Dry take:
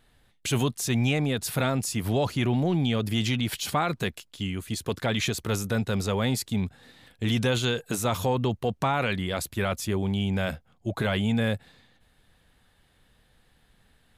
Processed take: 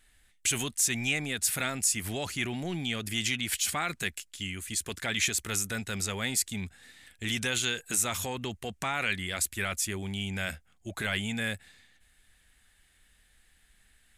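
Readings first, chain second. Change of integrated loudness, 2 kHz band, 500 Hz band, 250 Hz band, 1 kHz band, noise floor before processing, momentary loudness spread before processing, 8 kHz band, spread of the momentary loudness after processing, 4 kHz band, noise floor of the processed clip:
-3.0 dB, +1.0 dB, -10.5 dB, -9.5 dB, -7.0 dB, -65 dBFS, 7 LU, +6.5 dB, 9 LU, -0.5 dB, -66 dBFS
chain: ten-band EQ 125 Hz -12 dB, 250 Hz -5 dB, 500 Hz -9 dB, 1000 Hz -8 dB, 2000 Hz +5 dB, 4000 Hz -4 dB, 8000 Hz +9 dB

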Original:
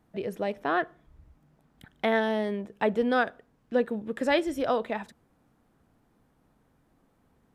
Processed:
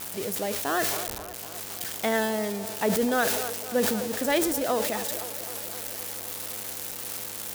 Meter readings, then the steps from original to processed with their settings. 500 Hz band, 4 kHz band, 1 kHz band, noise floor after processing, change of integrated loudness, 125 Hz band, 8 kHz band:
+0.5 dB, +7.5 dB, +0.5 dB, -38 dBFS, +0.5 dB, +3.5 dB, n/a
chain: switching spikes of -21 dBFS; buzz 100 Hz, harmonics 9, -49 dBFS -1 dB/oct; band-limited delay 0.258 s, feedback 74%, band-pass 700 Hz, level -13.5 dB; sustainer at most 32 dB/s; gain -1 dB

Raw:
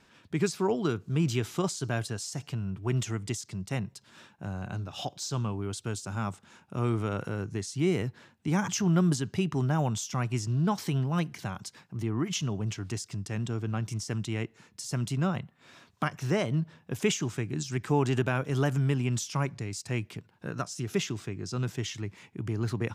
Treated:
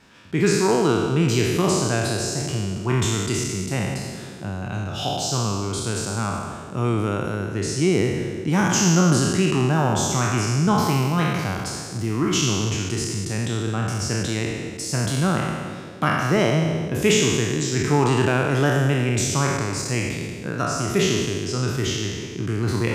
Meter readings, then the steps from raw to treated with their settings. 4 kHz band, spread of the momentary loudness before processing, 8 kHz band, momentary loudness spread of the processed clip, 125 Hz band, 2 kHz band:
+12.0 dB, 10 LU, +12.0 dB, 9 LU, +7.5 dB, +11.5 dB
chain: spectral trails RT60 1.64 s; narrowing echo 0.173 s, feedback 83%, band-pass 370 Hz, level -12 dB; gain +5.5 dB

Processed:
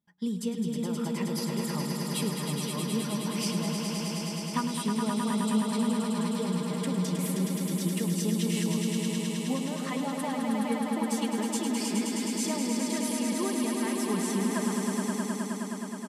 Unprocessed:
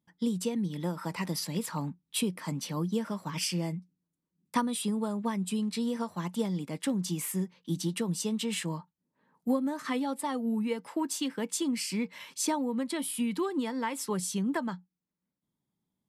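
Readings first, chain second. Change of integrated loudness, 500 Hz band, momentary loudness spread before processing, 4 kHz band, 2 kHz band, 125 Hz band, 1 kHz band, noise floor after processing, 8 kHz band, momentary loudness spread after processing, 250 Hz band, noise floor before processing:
+2.5 dB, +2.0 dB, 4 LU, +2.5 dB, +2.5 dB, +4.0 dB, +2.0 dB, -35 dBFS, +2.5 dB, 4 LU, +3.5 dB, under -85 dBFS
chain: comb 4.9 ms, depth 48%; on a send: swelling echo 0.105 s, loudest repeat 5, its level -5.5 dB; on the sum: gain -4 dB

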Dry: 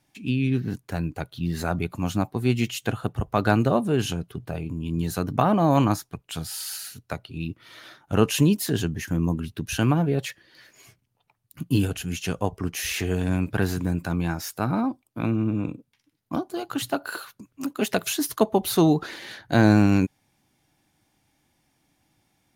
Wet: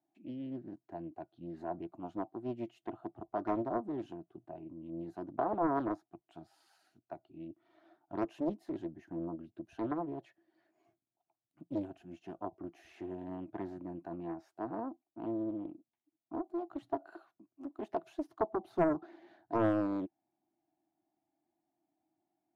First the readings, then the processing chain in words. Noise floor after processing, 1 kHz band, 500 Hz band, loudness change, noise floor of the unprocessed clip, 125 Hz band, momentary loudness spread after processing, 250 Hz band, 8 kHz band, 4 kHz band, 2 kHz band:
under -85 dBFS, -10.5 dB, -11.0 dB, -14.0 dB, -72 dBFS, -24.5 dB, 17 LU, -14.0 dB, under -40 dB, under -30 dB, -20.5 dB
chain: double band-pass 480 Hz, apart 1 oct; Doppler distortion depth 0.93 ms; gain -5 dB

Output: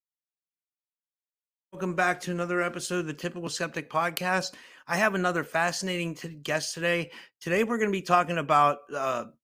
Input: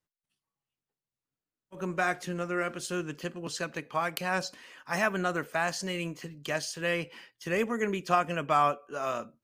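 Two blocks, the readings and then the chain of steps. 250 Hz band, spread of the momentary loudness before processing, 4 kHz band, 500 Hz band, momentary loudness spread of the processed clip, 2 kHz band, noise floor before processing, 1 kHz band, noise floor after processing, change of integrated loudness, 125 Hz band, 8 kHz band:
+3.5 dB, 10 LU, +3.5 dB, +3.5 dB, 10 LU, +3.5 dB, under -85 dBFS, +3.5 dB, under -85 dBFS, +3.5 dB, +3.5 dB, +3.5 dB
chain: expander -46 dBFS; gain +3.5 dB

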